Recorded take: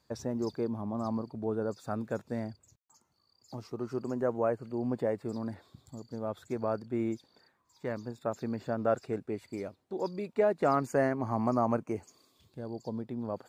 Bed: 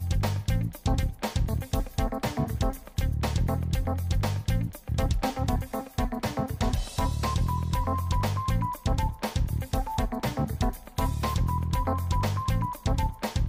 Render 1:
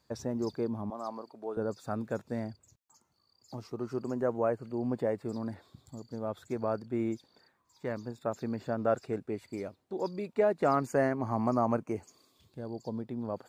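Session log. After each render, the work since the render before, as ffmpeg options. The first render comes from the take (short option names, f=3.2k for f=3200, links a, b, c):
-filter_complex "[0:a]asettb=1/sr,asplit=3[a][b][c];[a]atrim=end=0.904[d];[b]atrim=start=0.9:end=1.57,asetpts=PTS-STARTPTS,afade=t=in:d=0.004:c=qsin,afade=t=out:st=0.666:d=0.004:c=qsin,highpass=480[e];[c]atrim=start=1.566[f];[d][e]acrossfade=d=0.004:c1=hsin:c2=qsin[g];[g][f]acrossfade=d=0.004:c1=qsin:c2=hsin"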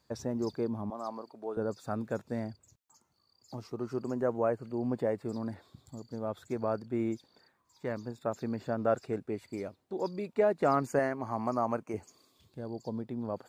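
-filter_complex "[0:a]asettb=1/sr,asplit=3[a][b][c];[a]atrim=end=10.994[d];[b]atrim=start=10.99:end=11.94,asetpts=PTS-STARTPTS,afade=t=in:d=0.004:c=qsin,afade=t=out:st=0.946:d=0.004:c=qsin,lowshelf=f=370:g=-7.5[e];[c]atrim=start=11.936[f];[d][e]acrossfade=d=0.004:c1=hsin:c2=qsin[g];[g][f]acrossfade=d=0.004:c1=qsin:c2=hsin"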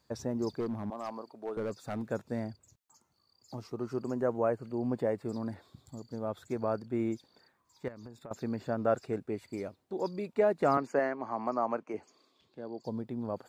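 -filter_complex "[0:a]asettb=1/sr,asplit=3[a][b][c];[a]atrim=end=0.604[d];[b]atrim=start=0.6:end=2.08,asetpts=PTS-STARTPTS,afade=t=in:d=0.004:c=qsin,afade=t=out:st=1.476:d=0.004:c=qsin,volume=30dB,asoftclip=hard,volume=-30dB[e];[c]atrim=start=2.076[f];[d][e]acrossfade=d=0.004:c1=hsin:c2=qsin[g];[g][f]acrossfade=d=0.004:c1=qsin:c2=hsin,asettb=1/sr,asplit=3[h][i][j];[h]atrim=end=7.884[k];[i]atrim=start=7.88:end=8.31,asetpts=PTS-STARTPTS,afade=t=in:d=0.004:c=qsin,afade=t=out:st=0.426:d=0.004:c=qsin,acompressor=threshold=-42dB:ratio=10:attack=3.2:release=140:knee=1:detection=peak[l];[j]atrim=start=8.306[m];[k][l]acrossfade=d=0.004:c1=hsin:c2=qsin[n];[n][m]acrossfade=d=0.004:c1=qsin:c2=hsin,asettb=1/sr,asplit=3[o][p][q];[o]atrim=end=10.774[r];[p]atrim=start=10.77:end=12.84,asetpts=PTS-STARTPTS,afade=t=in:d=0.004:c=qsin,afade=t=out:st=2.066:d=0.004:c=qsin,acrossover=split=210 5400:gain=0.158 1 0.141[s][t][u];[s][t][u]amix=inputs=3:normalize=0[v];[q]atrim=start=12.836[w];[r][v]acrossfade=d=0.004:c1=hsin:c2=qsin[x];[x][w]acrossfade=d=0.004:c1=qsin:c2=hsin"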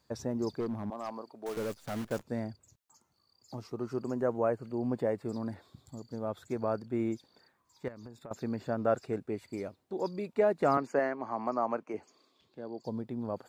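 -filter_complex "[0:a]asettb=1/sr,asplit=3[a][b][c];[a]atrim=end=1.464[d];[b]atrim=start=1.46:end=2.23,asetpts=PTS-STARTPTS,afade=t=in:d=0.004:c=qsin,afade=t=out:st=0.766:d=0.004:c=qsin,acrusher=bits=8:dc=4:mix=0:aa=0.000001[e];[c]atrim=start=2.226[f];[d][e]acrossfade=d=0.004:c1=hsin:c2=qsin[g];[g][f]acrossfade=d=0.004:c1=qsin:c2=hsin"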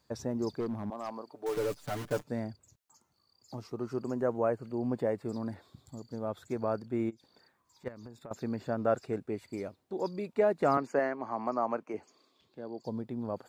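-filter_complex "[0:a]asettb=1/sr,asplit=3[a][b][c];[a]atrim=end=1.314[d];[b]atrim=start=1.31:end=2.31,asetpts=PTS-STARTPTS,afade=t=in:d=0.004:c=qsin,afade=t=out:st=0.996:d=0.004:c=qsin,aecho=1:1:6.8:0.79,atrim=end_sample=44100[e];[c]atrim=start=2.306[f];[d][e]acrossfade=d=0.004:c1=hsin:c2=qsin[g];[g][f]acrossfade=d=0.004:c1=qsin:c2=hsin,asplit=3[h][i][j];[h]afade=t=out:st=7.09:d=0.02[k];[i]acompressor=threshold=-49dB:ratio=20:attack=3.2:release=140:knee=1:detection=peak,afade=t=in:st=7.09:d=0.02,afade=t=out:st=7.85:d=0.02[l];[j]afade=t=in:st=7.85:d=0.02[m];[k][l][m]amix=inputs=3:normalize=0"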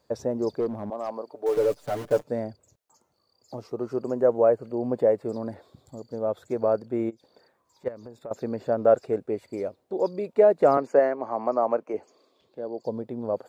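-af "equalizer=f=530:w=1.2:g=11.5"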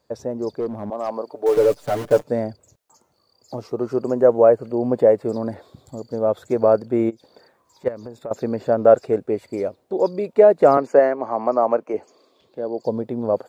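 -af "dynaudnorm=f=610:g=3:m=8dB"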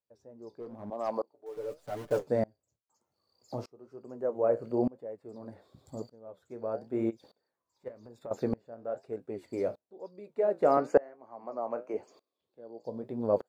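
-af "flanger=delay=8.7:depth=9.2:regen=-57:speed=0.98:shape=sinusoidal,aeval=exprs='val(0)*pow(10,-28*if(lt(mod(-0.82*n/s,1),2*abs(-0.82)/1000),1-mod(-0.82*n/s,1)/(2*abs(-0.82)/1000),(mod(-0.82*n/s,1)-2*abs(-0.82)/1000)/(1-2*abs(-0.82)/1000))/20)':c=same"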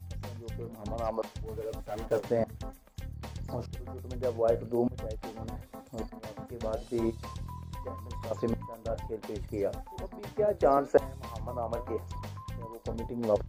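-filter_complex "[1:a]volume=-14dB[a];[0:a][a]amix=inputs=2:normalize=0"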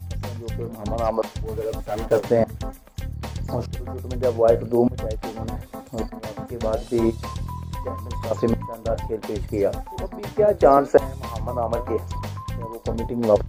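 -af "volume=10dB,alimiter=limit=-2dB:level=0:latency=1"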